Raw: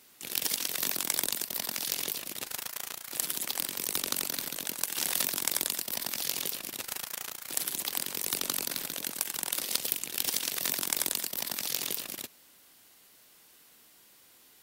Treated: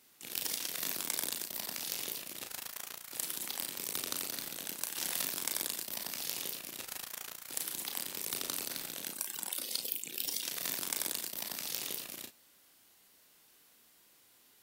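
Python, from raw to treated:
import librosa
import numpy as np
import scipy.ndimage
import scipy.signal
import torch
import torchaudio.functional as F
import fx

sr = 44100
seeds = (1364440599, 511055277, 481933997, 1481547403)

y = fx.spec_expand(x, sr, power=1.9, at=(9.11, 10.45))
y = fx.room_early_taps(y, sr, ms=(34, 52), db=(-6.0, -15.0))
y = y * 10.0 ** (-6.5 / 20.0)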